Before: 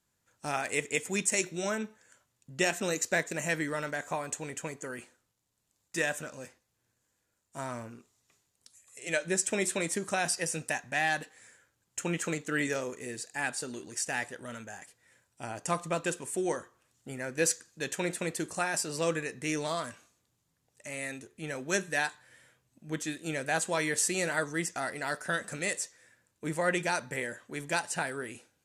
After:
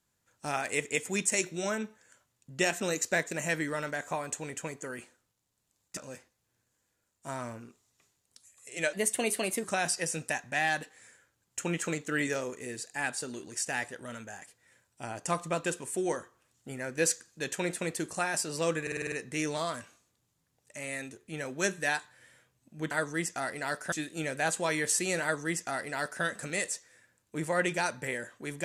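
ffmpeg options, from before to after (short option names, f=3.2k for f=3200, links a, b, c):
-filter_complex "[0:a]asplit=12[a][b][c][d][e][f][g][h][i][j][k][l];[a]atrim=end=5.972[m];[b]atrim=start=6.268:end=9.234[n];[c]atrim=start=9.23:end=10.04,asetpts=PTS-STARTPTS,asetrate=50274,aresample=44100,atrim=end_sample=31334,asetpts=PTS-STARTPTS[o];[d]atrim=start=10.036:end=19.272[p];[e]atrim=start=19.218:end=19.272[q];[f]atrim=start=19.218:end=19.272[r];[g]atrim=start=19.218:end=19.272[s];[h]atrim=start=19.218:end=19.272[t];[i]atrim=start=19.218:end=19.272[u];[j]atrim=start=19.218:end=23.012[v];[k]atrim=start=24.308:end=25.322[w];[l]atrim=start=23.008[x];[m][n]acrossfade=d=0.004:c1=hsin:c2=hsin[y];[y][o]acrossfade=d=0.004:c1=hsin:c2=hsin[z];[z][p]acrossfade=d=0.004:c1=hsin:c2=hsin[aa];[aa][q]acrossfade=d=0.004:c1=hsin:c2=hsin[ab];[ab][r]acrossfade=d=0.004:c1=hsin:c2=hsin[ac];[ac][s]acrossfade=d=0.004:c1=hsin:c2=hsin[ad];[ad][t]acrossfade=d=0.004:c1=hsin:c2=hsin[ae];[ae][u]acrossfade=d=0.004:c1=hsin:c2=hsin[af];[af][v]acrossfade=d=0.004:c1=hsin:c2=hsin[ag];[ag][w]acrossfade=d=0.004:c1=hsin:c2=hsin[ah];[ah][x]acrossfade=d=0.004:c1=hsin:c2=hsin"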